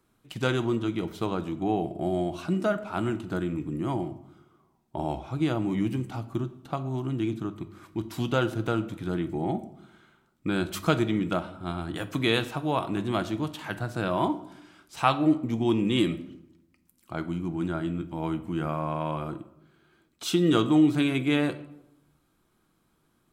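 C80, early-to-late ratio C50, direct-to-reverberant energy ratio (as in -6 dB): 17.5 dB, 15.0 dB, 9.0 dB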